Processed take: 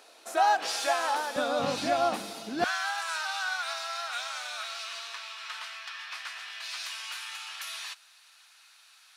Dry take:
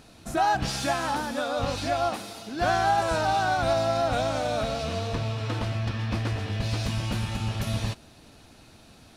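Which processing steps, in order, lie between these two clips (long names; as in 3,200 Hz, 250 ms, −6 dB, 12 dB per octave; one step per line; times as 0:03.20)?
high-pass filter 440 Hz 24 dB per octave, from 0:01.36 160 Hz, from 0:02.64 1,200 Hz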